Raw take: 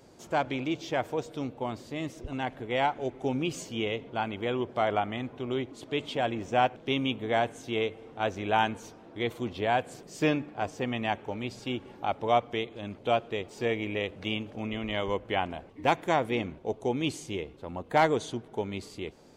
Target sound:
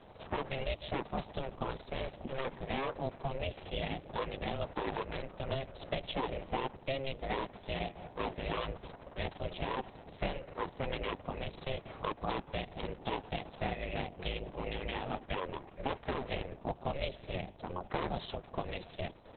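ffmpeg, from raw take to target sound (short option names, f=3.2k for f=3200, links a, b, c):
-filter_complex "[0:a]acrossover=split=150|440|2400[a][b][c][d];[c]asoftclip=type=tanh:threshold=-26.5dB[e];[a][b][e][d]amix=inputs=4:normalize=0,aeval=exprs='val(0)*sin(2*PI*270*n/s)':c=same,acrossover=split=960|3500[f][g][h];[f]acompressor=threshold=-39dB:ratio=4[i];[g]acompressor=threshold=-46dB:ratio=4[j];[h]acompressor=threshold=-55dB:ratio=4[k];[i][j][k]amix=inputs=3:normalize=0,volume=6dB" -ar 48000 -c:a libopus -b:a 6k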